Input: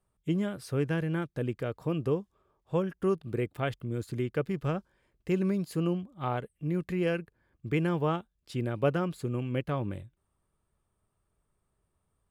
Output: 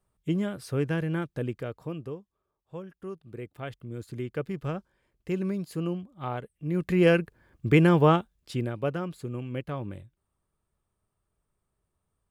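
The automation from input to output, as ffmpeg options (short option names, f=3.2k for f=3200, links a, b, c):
-af "volume=21.5dB,afade=t=out:st=1.33:d=0.86:silence=0.237137,afade=t=in:st=3.17:d=1.3:silence=0.334965,afade=t=in:st=6.64:d=0.43:silence=0.298538,afade=t=out:st=8.12:d=0.66:silence=0.266073"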